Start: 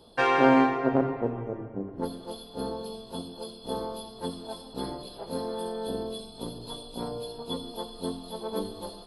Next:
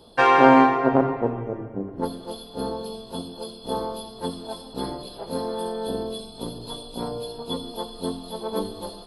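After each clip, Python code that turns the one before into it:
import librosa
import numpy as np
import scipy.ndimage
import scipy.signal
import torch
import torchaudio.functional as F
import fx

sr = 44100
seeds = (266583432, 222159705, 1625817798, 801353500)

y = fx.dynamic_eq(x, sr, hz=970.0, q=1.4, threshold_db=-37.0, ratio=4.0, max_db=5)
y = F.gain(torch.from_numpy(y), 4.0).numpy()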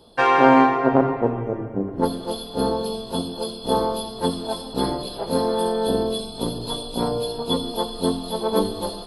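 y = fx.rider(x, sr, range_db=4, speed_s=2.0)
y = F.gain(torch.from_numpy(y), 3.0).numpy()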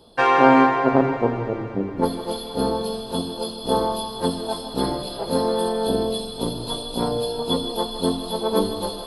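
y = fx.echo_thinned(x, sr, ms=158, feedback_pct=79, hz=420.0, wet_db=-12.5)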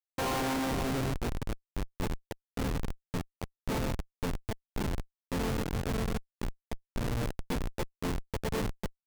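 y = x + 10.0 ** (-13.0 / 20.0) * np.pad(x, (int(90 * sr / 1000.0), 0))[:len(x)]
y = fx.schmitt(y, sr, flips_db=-18.0)
y = F.gain(torch.from_numpy(y), -8.5).numpy()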